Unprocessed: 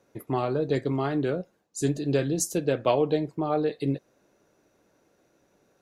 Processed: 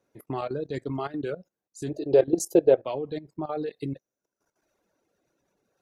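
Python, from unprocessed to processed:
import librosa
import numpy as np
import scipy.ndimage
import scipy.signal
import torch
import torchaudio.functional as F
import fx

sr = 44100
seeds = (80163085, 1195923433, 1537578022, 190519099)

y = fx.dereverb_blind(x, sr, rt60_s=1.2)
y = fx.band_shelf(y, sr, hz=540.0, db=14.0, octaves=1.7, at=(1.89, 2.83), fade=0.02)
y = fx.level_steps(y, sr, step_db=15)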